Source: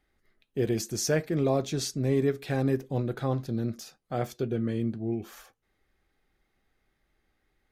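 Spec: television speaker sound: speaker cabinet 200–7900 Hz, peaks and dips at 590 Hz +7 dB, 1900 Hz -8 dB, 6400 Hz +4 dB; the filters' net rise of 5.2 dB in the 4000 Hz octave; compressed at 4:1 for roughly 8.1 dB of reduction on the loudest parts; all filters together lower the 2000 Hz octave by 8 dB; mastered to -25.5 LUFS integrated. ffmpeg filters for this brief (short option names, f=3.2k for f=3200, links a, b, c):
-af "equalizer=f=2k:t=o:g=-8.5,equalizer=f=4k:t=o:g=8,acompressor=threshold=-31dB:ratio=4,highpass=f=200:w=0.5412,highpass=f=200:w=1.3066,equalizer=f=590:t=q:w=4:g=7,equalizer=f=1.9k:t=q:w=4:g=-8,equalizer=f=6.4k:t=q:w=4:g=4,lowpass=f=7.9k:w=0.5412,lowpass=f=7.9k:w=1.3066,volume=10dB"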